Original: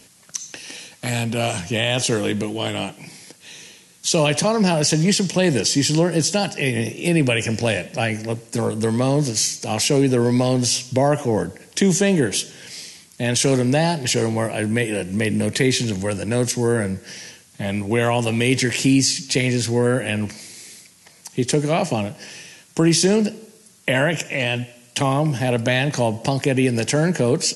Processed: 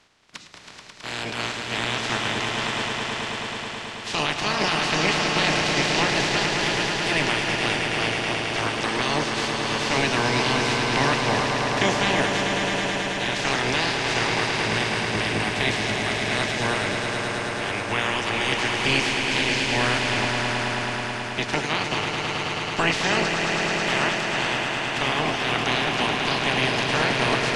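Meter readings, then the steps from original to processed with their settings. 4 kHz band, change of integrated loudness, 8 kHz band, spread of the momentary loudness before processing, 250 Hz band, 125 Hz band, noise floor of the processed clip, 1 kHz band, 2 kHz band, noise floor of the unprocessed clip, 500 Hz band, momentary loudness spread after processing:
+1.5 dB, −2.5 dB, −8.5 dB, 14 LU, −8.0 dB, −8.5 dB, −33 dBFS, +3.5 dB, +4.0 dB, −51 dBFS, −6.0 dB, 6 LU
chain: ceiling on every frequency bin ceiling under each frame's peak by 29 dB
high-frequency loss of the air 150 metres
notch filter 520 Hz, Q 12
echo that builds up and dies away 108 ms, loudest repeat 5, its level −7 dB
level −4.5 dB

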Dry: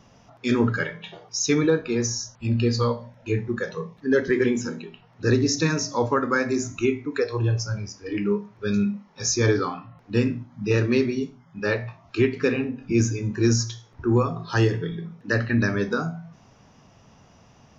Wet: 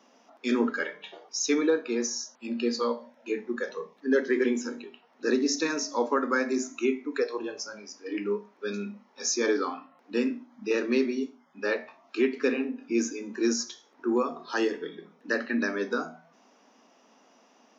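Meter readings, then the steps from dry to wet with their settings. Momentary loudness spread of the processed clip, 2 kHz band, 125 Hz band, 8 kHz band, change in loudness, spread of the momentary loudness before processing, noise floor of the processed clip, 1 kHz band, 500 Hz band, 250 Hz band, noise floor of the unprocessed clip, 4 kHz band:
11 LU, −4.0 dB, below −25 dB, can't be measured, −5.0 dB, 10 LU, −62 dBFS, −3.5 dB, −3.5 dB, −4.5 dB, −55 dBFS, −4.0 dB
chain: elliptic high-pass filter 240 Hz, stop band 60 dB
level −3 dB

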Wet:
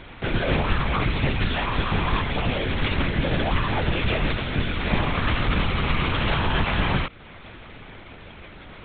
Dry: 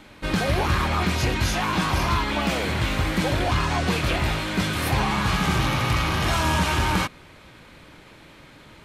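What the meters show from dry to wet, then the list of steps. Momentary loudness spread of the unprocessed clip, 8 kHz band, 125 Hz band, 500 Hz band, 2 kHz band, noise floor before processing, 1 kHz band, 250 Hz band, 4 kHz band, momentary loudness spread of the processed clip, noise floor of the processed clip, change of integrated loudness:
3 LU, below −40 dB, −0.5 dB, 0.0 dB, −1.0 dB, −48 dBFS, −3.0 dB, −1.0 dB, −1.5 dB, 20 LU, −43 dBFS, −1.0 dB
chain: dynamic equaliser 1,000 Hz, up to −4 dB, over −36 dBFS, Q 0.98
in parallel at −0.5 dB: downward compressor, threshold −40 dBFS, peak gain reduction 20 dB
on the sum: linear-prediction vocoder at 8 kHz whisper

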